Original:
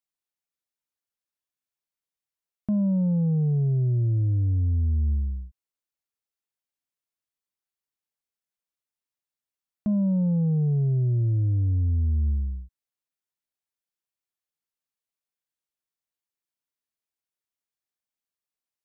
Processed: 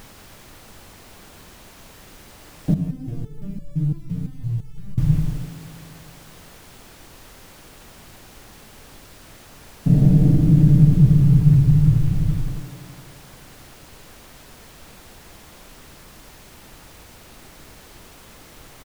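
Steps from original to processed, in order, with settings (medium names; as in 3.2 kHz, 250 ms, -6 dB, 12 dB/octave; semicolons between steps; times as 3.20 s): companding laws mixed up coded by A; LPC vocoder at 8 kHz whisper; peaking EQ 150 Hz +11 dB 0.51 oct; comb 6.7 ms, depth 93%; feedback echo behind a band-pass 87 ms, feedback 79%, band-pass 470 Hz, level -3.5 dB; added noise pink -46 dBFS; 2.74–4.98 s: resonator arpeggio 5.9 Hz 90–570 Hz; trim +1.5 dB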